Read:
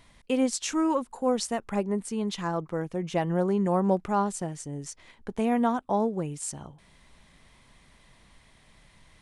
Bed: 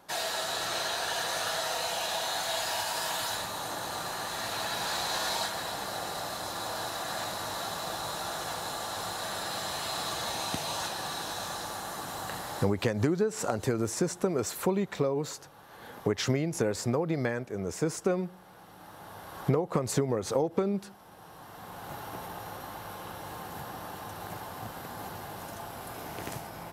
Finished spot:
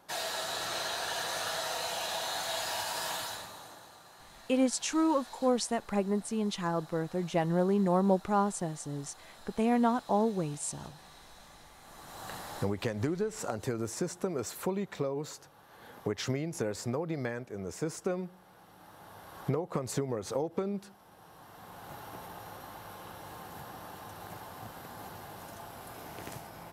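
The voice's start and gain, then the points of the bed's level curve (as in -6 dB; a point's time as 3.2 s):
4.20 s, -2.0 dB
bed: 3.13 s -3 dB
3.99 s -19.5 dB
11.74 s -19.5 dB
12.3 s -5 dB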